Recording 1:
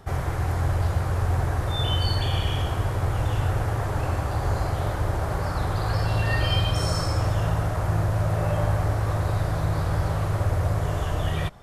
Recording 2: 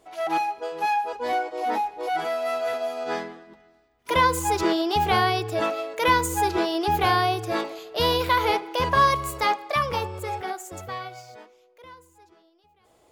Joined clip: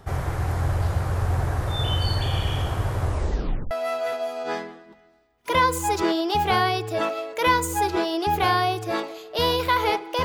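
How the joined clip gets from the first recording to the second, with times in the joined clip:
recording 1
3.02 s: tape stop 0.69 s
3.71 s: go over to recording 2 from 2.32 s

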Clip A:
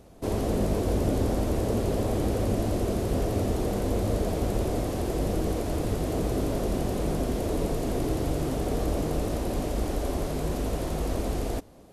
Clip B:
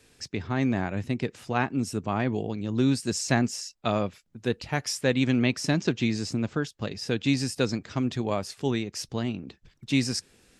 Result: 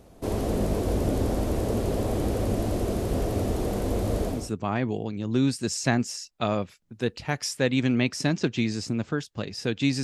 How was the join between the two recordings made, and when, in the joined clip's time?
clip A
4.38 s: go over to clip B from 1.82 s, crossfade 0.28 s

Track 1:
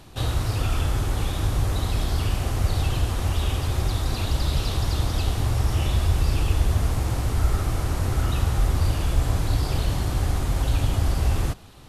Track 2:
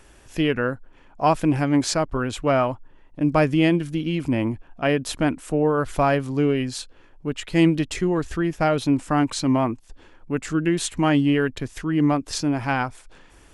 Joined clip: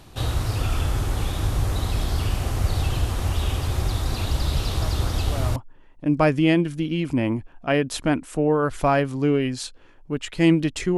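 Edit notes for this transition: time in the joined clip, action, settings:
track 1
4.77 s: add track 2 from 1.92 s 0.79 s -15 dB
5.56 s: go over to track 2 from 2.71 s

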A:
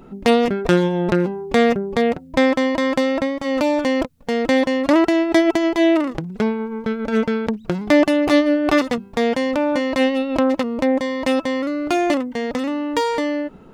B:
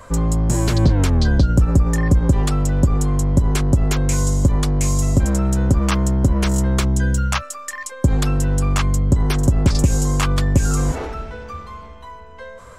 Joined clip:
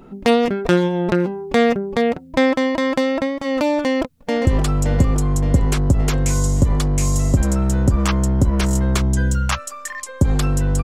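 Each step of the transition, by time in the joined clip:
A
3.71–4.47 s: echo throw 570 ms, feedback 60%, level -8.5 dB
4.47 s: go over to B from 2.30 s

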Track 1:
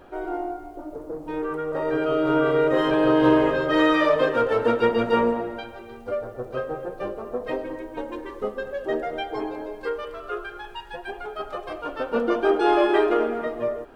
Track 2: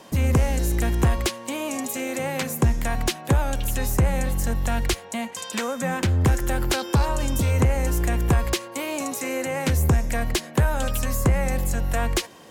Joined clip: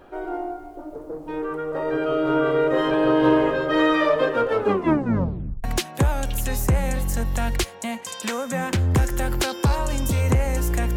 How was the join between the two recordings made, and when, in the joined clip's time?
track 1
4.56 s: tape stop 1.08 s
5.64 s: go over to track 2 from 2.94 s

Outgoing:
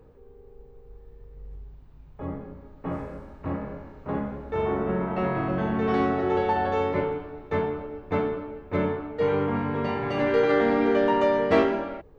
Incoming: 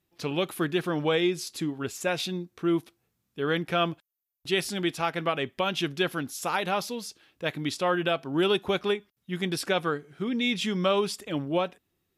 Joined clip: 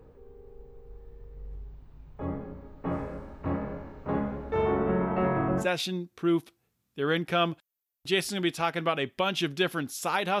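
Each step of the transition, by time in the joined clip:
outgoing
4.71–5.67 s: low-pass 4.8 kHz -> 1.4 kHz
5.62 s: go over to incoming from 2.02 s, crossfade 0.10 s

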